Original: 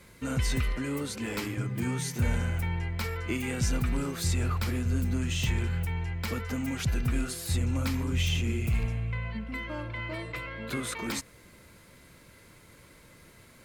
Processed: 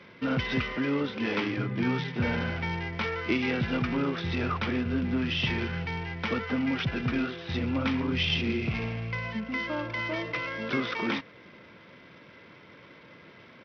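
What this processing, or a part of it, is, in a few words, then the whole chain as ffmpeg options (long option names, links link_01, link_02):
Bluetooth headset: -af "highpass=170,aresample=8000,aresample=44100,volume=5.5dB" -ar 44100 -c:a sbc -b:a 64k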